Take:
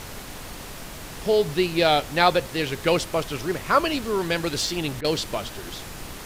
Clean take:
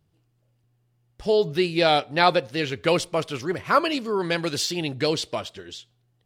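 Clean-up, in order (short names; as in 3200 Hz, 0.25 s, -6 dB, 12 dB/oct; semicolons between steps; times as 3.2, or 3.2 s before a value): interpolate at 5.01, 33 ms; noise print and reduce 30 dB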